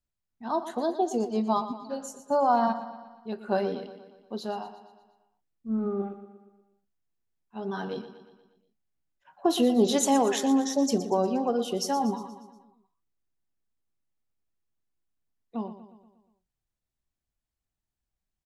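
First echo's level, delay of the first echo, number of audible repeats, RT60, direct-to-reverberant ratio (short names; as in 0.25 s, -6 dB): -12.5 dB, 0.119 s, 5, none, none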